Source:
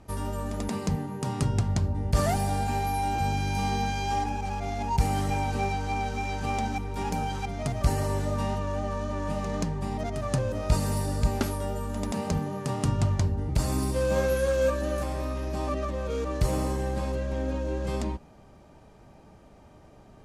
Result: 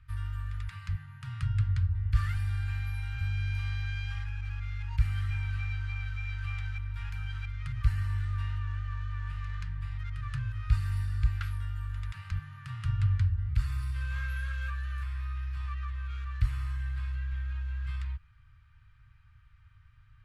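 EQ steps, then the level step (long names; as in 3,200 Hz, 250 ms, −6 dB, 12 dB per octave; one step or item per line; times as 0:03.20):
elliptic band-stop filter 110–1,400 Hz, stop band 40 dB
high-frequency loss of the air 490 metres
high-shelf EQ 4,900 Hz +12 dB
0.0 dB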